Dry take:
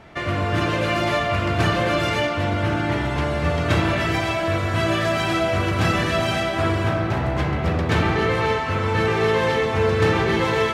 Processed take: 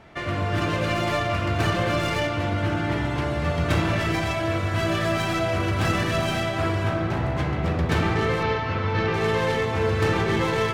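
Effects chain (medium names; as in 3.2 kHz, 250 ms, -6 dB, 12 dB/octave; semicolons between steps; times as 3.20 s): tracing distortion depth 0.056 ms; 8.43–9.14 s: low-pass 5.3 kHz 24 dB/octave; on a send: reverberation RT60 1.1 s, pre-delay 113 ms, DRR 17 dB; on the sum: trim -3.5 dB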